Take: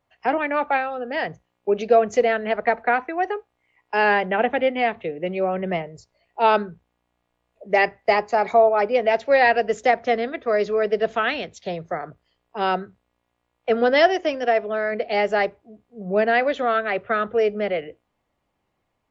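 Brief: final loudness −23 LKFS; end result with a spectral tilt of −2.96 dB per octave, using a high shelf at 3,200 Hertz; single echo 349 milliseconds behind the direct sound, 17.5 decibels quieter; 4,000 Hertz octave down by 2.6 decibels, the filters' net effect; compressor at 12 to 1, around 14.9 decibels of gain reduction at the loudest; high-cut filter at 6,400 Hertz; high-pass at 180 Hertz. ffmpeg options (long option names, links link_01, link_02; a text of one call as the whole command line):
ffmpeg -i in.wav -af "highpass=180,lowpass=6400,highshelf=frequency=3200:gain=4.5,equalizer=frequency=4000:width_type=o:gain=-7,acompressor=threshold=-26dB:ratio=12,aecho=1:1:349:0.133,volume=8.5dB" out.wav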